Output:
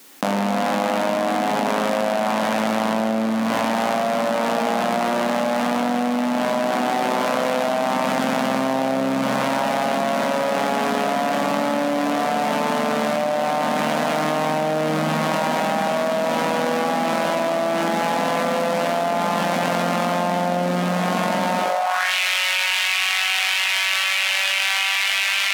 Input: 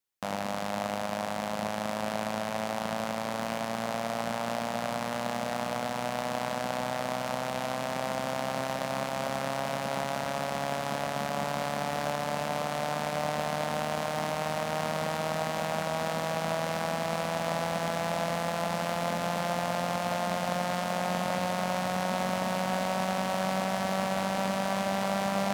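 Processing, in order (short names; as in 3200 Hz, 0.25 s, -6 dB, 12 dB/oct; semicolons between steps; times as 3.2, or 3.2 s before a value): spring tank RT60 1.4 s, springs 45 ms, chirp 40 ms, DRR 0 dB; high-pass sweep 250 Hz -> 2500 Hz, 21.57–22.14; fast leveller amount 100%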